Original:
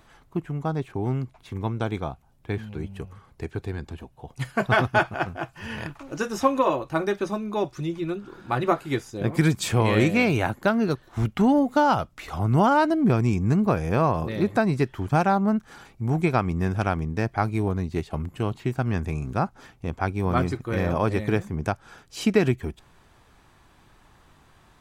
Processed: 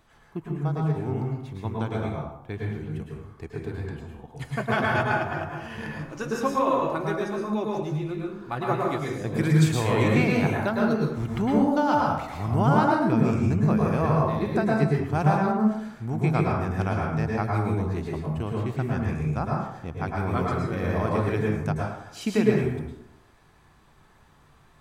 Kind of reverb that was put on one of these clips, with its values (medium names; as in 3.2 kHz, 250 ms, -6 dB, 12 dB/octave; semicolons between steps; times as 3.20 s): plate-style reverb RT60 0.81 s, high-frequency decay 0.55×, pre-delay 95 ms, DRR -2.5 dB; trim -6 dB